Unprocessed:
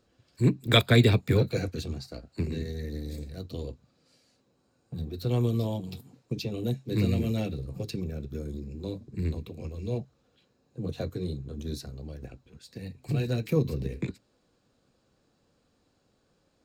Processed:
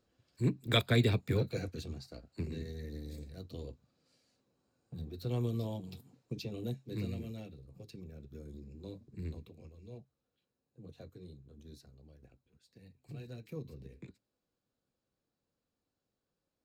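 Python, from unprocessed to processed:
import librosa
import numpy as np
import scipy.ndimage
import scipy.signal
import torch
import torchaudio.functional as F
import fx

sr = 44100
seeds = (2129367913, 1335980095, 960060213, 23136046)

y = fx.gain(x, sr, db=fx.line((6.63, -8.0), (7.59, -18.0), (8.64, -11.0), (9.38, -11.0), (9.8, -18.0)))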